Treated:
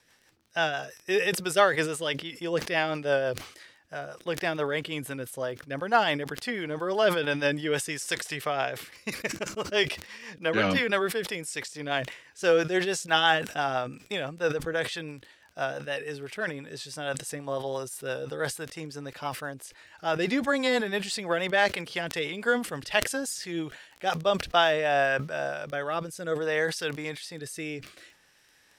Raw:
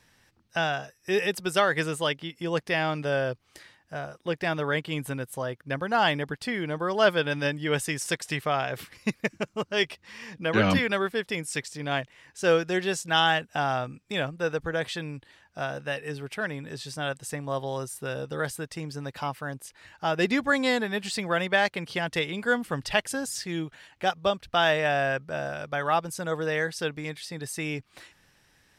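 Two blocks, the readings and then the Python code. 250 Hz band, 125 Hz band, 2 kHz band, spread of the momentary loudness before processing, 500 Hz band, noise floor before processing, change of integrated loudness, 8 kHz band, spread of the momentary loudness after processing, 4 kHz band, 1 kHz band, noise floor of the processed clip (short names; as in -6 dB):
-2.0 dB, -4.5 dB, -0.5 dB, 12 LU, +0.5 dB, -65 dBFS, -0.5 dB, +1.0 dB, 13 LU, -0.5 dB, -1.0 dB, -61 dBFS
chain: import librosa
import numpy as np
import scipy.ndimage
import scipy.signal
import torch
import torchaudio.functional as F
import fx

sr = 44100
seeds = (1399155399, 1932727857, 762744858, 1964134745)

y = fx.bass_treble(x, sr, bass_db=-11, treble_db=1)
y = fx.dmg_crackle(y, sr, seeds[0], per_s=12.0, level_db=-40.0)
y = fx.hpss(y, sr, part='harmonic', gain_db=4)
y = fx.rotary_switch(y, sr, hz=6.0, then_hz=0.6, switch_at_s=24.06)
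y = fx.sustainer(y, sr, db_per_s=110.0)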